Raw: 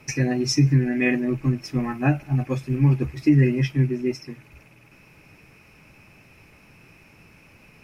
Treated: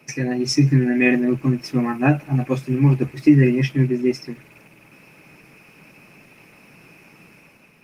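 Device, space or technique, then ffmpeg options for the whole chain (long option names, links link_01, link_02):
video call: -filter_complex "[0:a]asplit=3[link_01][link_02][link_03];[link_01]afade=type=out:start_time=2.51:duration=0.02[link_04];[link_02]highpass=41,afade=type=in:start_time=2.51:duration=0.02,afade=type=out:start_time=3.34:duration=0.02[link_05];[link_03]afade=type=in:start_time=3.34:duration=0.02[link_06];[link_04][link_05][link_06]amix=inputs=3:normalize=0,highpass=frequency=140:width=0.5412,highpass=frequency=140:width=1.3066,dynaudnorm=framelen=110:gausssize=9:maxgain=6dB" -ar 48000 -c:a libopus -b:a 24k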